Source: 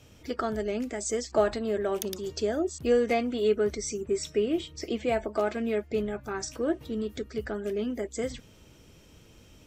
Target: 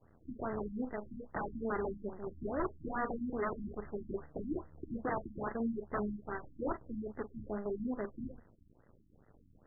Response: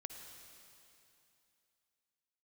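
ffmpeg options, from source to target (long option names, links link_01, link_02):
-filter_complex "[0:a]aeval=exprs='(mod(11.9*val(0)+1,2)-1)/11.9':channel_layout=same,acrusher=bits=6:dc=4:mix=0:aa=0.000001[link_01];[1:a]atrim=start_sample=2205,atrim=end_sample=3969,asetrate=79380,aresample=44100[link_02];[link_01][link_02]afir=irnorm=-1:irlink=0,afftfilt=real='re*lt(b*sr/1024,310*pow(2100/310,0.5+0.5*sin(2*PI*2.4*pts/sr)))':imag='im*lt(b*sr/1024,310*pow(2100/310,0.5+0.5*sin(2*PI*2.4*pts/sr)))':win_size=1024:overlap=0.75,volume=4dB"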